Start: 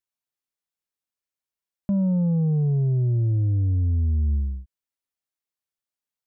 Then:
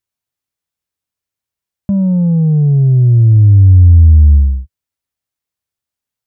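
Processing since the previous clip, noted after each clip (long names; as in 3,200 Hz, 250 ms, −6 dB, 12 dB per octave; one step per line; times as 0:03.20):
parametric band 86 Hz +11 dB 1.5 octaves
level +6 dB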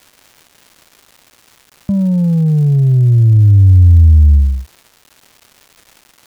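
surface crackle 470 per second −31 dBFS
level −1 dB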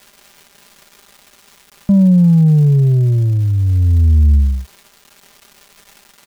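comb filter 5 ms, depth 60%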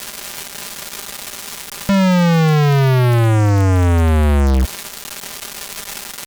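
fuzz pedal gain 37 dB, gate −41 dBFS
level +1.5 dB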